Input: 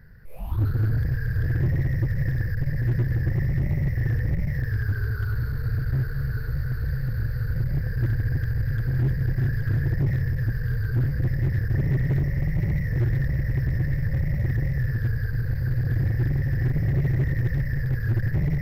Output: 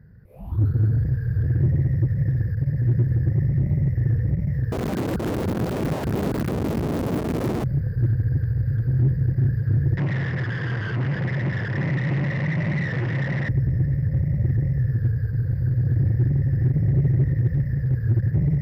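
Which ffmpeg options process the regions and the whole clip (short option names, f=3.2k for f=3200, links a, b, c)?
-filter_complex "[0:a]asettb=1/sr,asplit=3[a][b][c];[a]atrim=end=4.724[d];[b]atrim=start=4.72:end=7.64,asetpts=PTS-STARTPTS,afade=t=in:d=0.004:c=qsin,afade=t=out:st=2.916:d=0.004:c=qsin,lowshelf=f=210:g=6.5,aeval=exprs='(mod(10*val(0)+1,2)-1)/10':c=same[e];[c]atrim=start=7.636[f];[d][e]acrossfade=d=0.004:c1=hsin:c2=qsin[g];[g][f]acrossfade=d=0.004:c1=qsin:c2=hsin,asettb=1/sr,asplit=3[h][i][j];[h]atrim=end=9.974[k];[i]atrim=start=9.97:end=13.49,asetpts=PTS-STARTPTS,afade=t=in:d=0.004:c=qsin,afade=t=out:st=3.516:d=0.004:c=qsin,asplit=2[l][m];[m]highpass=f=720:p=1,volume=33dB,asoftclip=type=tanh:threshold=-15.5dB[n];[l][n]amix=inputs=2:normalize=0,lowpass=f=1.8k:p=1,volume=-6dB,highpass=150,equalizer=f=250:t=q:w=4:g=-5,equalizer=f=460:t=q:w=4:g=-6,equalizer=f=1k:t=q:w=4:g=5,equalizer=f=2k:t=q:w=4:g=7,equalizer=f=2.8k:t=q:w=4:g=8,equalizer=f=5.1k:t=q:w=4:g=5,lowpass=f=7.1k:w=0.5412,lowpass=f=7.1k:w=1.3066[o];[j]atrim=start=13.486[p];[k][o]acrossfade=d=0.004:c1=hsin:c2=qsin[q];[q][p]acrossfade=d=0.004:c1=qsin:c2=hsin,highpass=82,tiltshelf=f=780:g=8.5,volume=-3.5dB"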